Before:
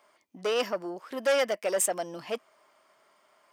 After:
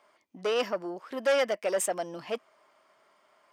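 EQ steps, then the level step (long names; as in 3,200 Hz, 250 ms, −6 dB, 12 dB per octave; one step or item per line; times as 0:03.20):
high-shelf EQ 7,100 Hz −8 dB
0.0 dB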